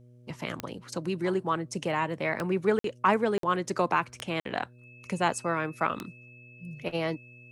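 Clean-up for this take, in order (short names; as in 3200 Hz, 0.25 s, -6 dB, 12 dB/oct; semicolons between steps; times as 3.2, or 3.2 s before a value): de-click; de-hum 122.1 Hz, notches 5; notch 2600 Hz, Q 30; interpolate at 2.79/3.38/4.4, 53 ms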